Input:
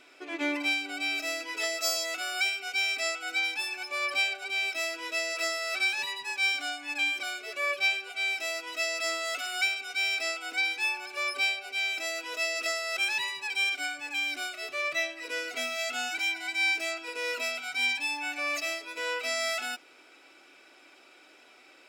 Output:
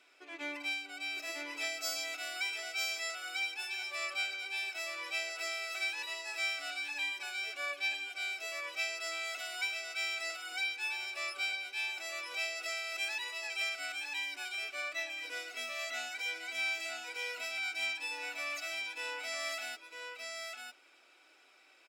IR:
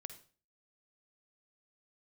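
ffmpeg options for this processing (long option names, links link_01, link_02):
-af "highpass=frequency=580:poles=1,aecho=1:1:953:0.631,volume=-8dB"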